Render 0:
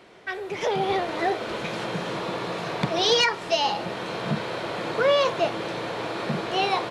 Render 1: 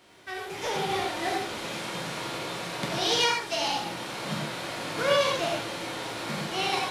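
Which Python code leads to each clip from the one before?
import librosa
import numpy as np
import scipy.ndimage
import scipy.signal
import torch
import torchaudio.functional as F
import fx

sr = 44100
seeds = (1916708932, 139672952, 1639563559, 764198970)

y = fx.envelope_flatten(x, sr, power=0.6)
y = fx.rev_gated(y, sr, seeds[0], gate_ms=160, shape='flat', drr_db=-2.0)
y = y * librosa.db_to_amplitude(-8.0)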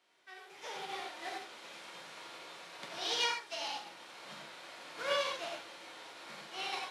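y = fx.weighting(x, sr, curve='A')
y = fx.upward_expand(y, sr, threshold_db=-37.0, expansion=1.5)
y = y * librosa.db_to_amplitude(-8.0)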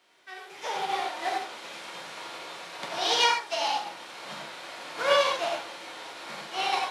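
y = fx.dynamic_eq(x, sr, hz=810.0, q=1.4, threshold_db=-54.0, ratio=4.0, max_db=6)
y = y * librosa.db_to_amplitude(8.5)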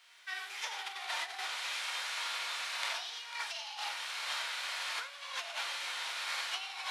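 y = fx.over_compress(x, sr, threshold_db=-36.0, ratio=-1.0)
y = scipy.signal.sosfilt(scipy.signal.butter(2, 1400.0, 'highpass', fs=sr, output='sos'), y)
y = y + 10.0 ** (-12.5 / 20.0) * np.pad(y, (int(496 * sr / 1000.0), 0))[:len(y)]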